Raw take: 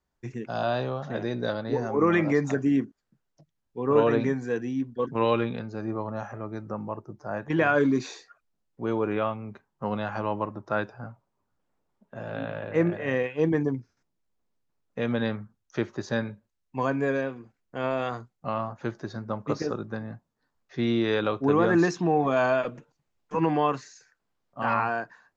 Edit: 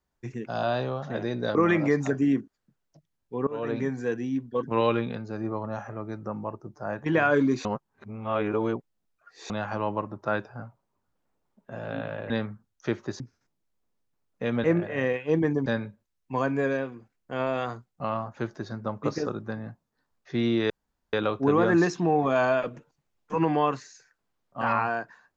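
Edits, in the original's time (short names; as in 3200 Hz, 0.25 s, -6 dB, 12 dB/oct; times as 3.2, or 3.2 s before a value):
1.55–1.99 cut
3.91–4.43 fade in, from -23.5 dB
8.09–9.94 reverse
12.74–13.76 swap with 15.2–16.1
21.14 insert room tone 0.43 s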